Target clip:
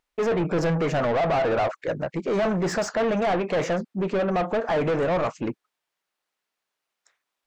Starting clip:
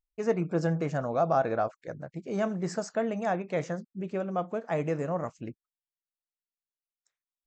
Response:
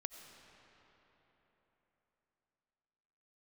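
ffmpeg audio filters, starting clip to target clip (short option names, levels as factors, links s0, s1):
-filter_complex "[0:a]asplit=2[s0][s1];[s1]highpass=f=720:p=1,volume=22.4,asoftclip=type=tanh:threshold=0.2[s2];[s0][s2]amix=inputs=2:normalize=0,lowpass=f=1600:p=1,volume=0.501,asoftclip=type=tanh:threshold=0.0944,volume=1.26"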